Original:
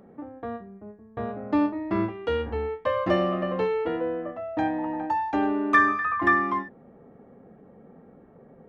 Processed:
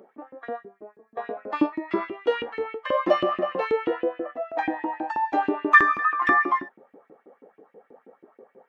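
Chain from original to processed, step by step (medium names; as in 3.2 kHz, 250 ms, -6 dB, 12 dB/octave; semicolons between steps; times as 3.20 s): coarse spectral quantiser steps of 15 dB; LFO high-pass saw up 6.2 Hz 270–2900 Hz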